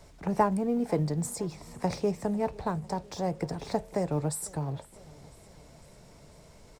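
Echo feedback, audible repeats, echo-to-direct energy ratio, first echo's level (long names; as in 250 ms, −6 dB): 59%, 3, −20.5 dB, −22.5 dB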